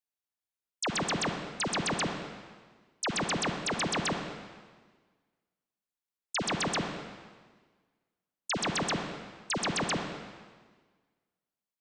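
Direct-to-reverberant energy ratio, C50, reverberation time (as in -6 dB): 3.5 dB, 4.5 dB, 1.5 s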